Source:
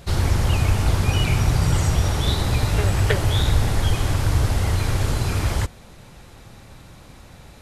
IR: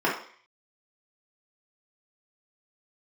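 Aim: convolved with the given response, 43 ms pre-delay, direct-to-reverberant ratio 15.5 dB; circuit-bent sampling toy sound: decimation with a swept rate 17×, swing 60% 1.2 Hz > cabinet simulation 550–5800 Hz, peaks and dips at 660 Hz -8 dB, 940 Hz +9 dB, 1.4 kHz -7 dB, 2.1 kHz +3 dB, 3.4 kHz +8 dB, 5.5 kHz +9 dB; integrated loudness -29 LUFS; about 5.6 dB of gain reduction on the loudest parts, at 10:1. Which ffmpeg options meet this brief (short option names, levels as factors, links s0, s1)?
-filter_complex "[0:a]acompressor=threshold=0.112:ratio=10,asplit=2[s0][s1];[1:a]atrim=start_sample=2205,adelay=43[s2];[s1][s2]afir=irnorm=-1:irlink=0,volume=0.0299[s3];[s0][s3]amix=inputs=2:normalize=0,acrusher=samples=17:mix=1:aa=0.000001:lfo=1:lforange=10.2:lforate=1.2,highpass=550,equalizer=f=660:t=q:w=4:g=-8,equalizer=f=940:t=q:w=4:g=9,equalizer=f=1400:t=q:w=4:g=-7,equalizer=f=2100:t=q:w=4:g=3,equalizer=f=3400:t=q:w=4:g=8,equalizer=f=5500:t=q:w=4:g=9,lowpass=f=5800:w=0.5412,lowpass=f=5800:w=1.3066,volume=1.41"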